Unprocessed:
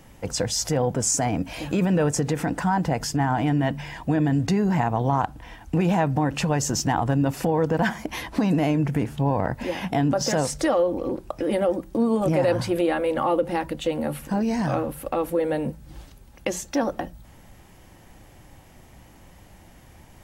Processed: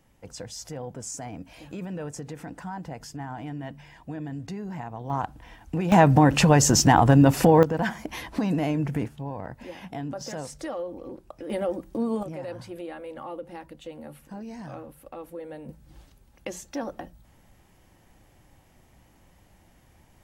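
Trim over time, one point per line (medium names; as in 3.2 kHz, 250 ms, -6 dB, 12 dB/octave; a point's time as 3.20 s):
-13.5 dB
from 5.10 s -5.5 dB
from 5.92 s +6 dB
from 7.63 s -4 dB
from 9.08 s -12 dB
from 11.50 s -5.5 dB
from 12.23 s -15 dB
from 15.69 s -8.5 dB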